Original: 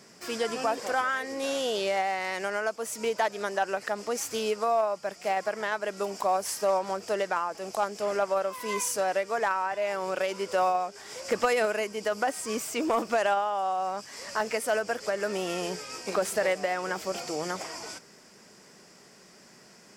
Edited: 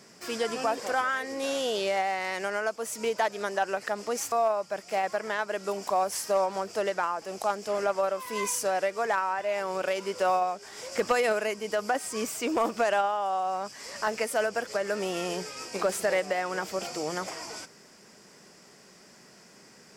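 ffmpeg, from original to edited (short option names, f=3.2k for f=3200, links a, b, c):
-filter_complex "[0:a]asplit=2[a][b];[a]atrim=end=4.322[c];[b]atrim=start=4.648[d];[c][d]acrossfade=d=0.004:c1=hsin:c2=hsin"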